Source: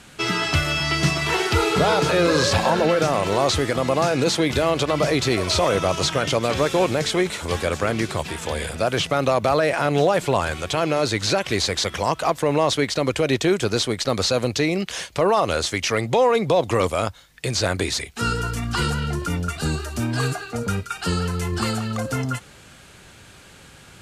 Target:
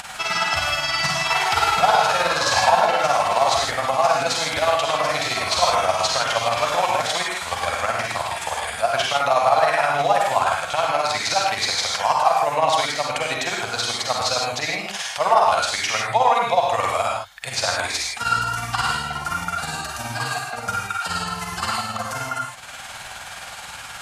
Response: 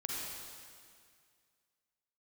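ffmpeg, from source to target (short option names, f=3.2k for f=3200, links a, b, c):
-filter_complex "[0:a]lowshelf=f=530:t=q:w=3:g=-11.5,acompressor=mode=upward:threshold=-26dB:ratio=2.5,tremolo=f=19:d=0.7[a];[1:a]atrim=start_sample=2205,afade=t=out:st=0.22:d=0.01,atrim=end_sample=10143[b];[a][b]afir=irnorm=-1:irlink=0,volume=4dB"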